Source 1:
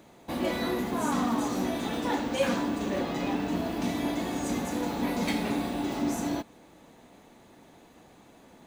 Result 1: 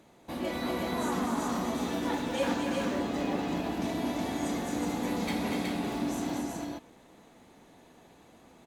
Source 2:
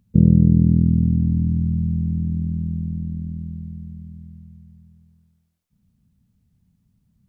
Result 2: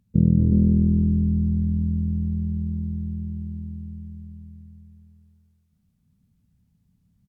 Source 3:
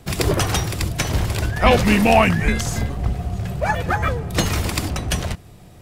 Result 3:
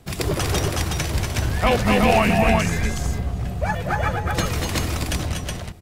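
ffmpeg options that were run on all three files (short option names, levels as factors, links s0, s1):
-af "aecho=1:1:233|245|369:0.376|0.473|0.708,volume=0.596" -ar 48000 -c:a libmp3lame -b:a 256k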